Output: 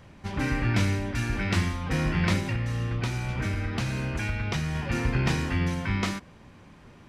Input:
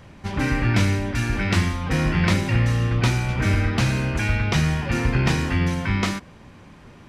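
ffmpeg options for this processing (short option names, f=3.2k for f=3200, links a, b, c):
-filter_complex "[0:a]asettb=1/sr,asplit=3[a][b][c];[a]atrim=end=2.384[d];[b]atrim=start=2.38:end=4.75,asetpts=PTS-STARTPTS,afade=t=in:d=0.004:c=qsin,afade=t=out:st=2.366:d=0.004:c=qsin,acompressor=threshold=-20dB:ratio=6[e];[c]atrim=start=4.746[f];[d][e]acrossfade=d=0.004:c1=hsin:c2=qsin[g];[g][f]acrossfade=d=0.004:c1=qsin:c2=hsin,volume=-5dB"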